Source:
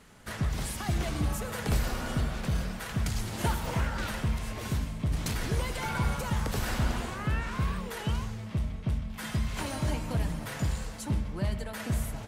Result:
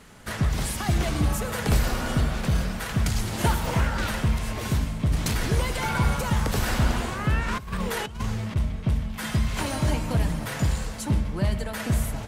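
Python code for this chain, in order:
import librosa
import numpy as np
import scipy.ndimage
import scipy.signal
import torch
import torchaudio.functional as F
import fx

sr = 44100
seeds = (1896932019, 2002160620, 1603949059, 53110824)

y = fx.over_compress(x, sr, threshold_db=-34.0, ratio=-0.5, at=(7.48, 8.56))
y = y + 10.0 ** (-23.5 / 20.0) * np.pad(y, (int(1044 * sr / 1000.0), 0))[:len(y)]
y = y * librosa.db_to_amplitude(6.0)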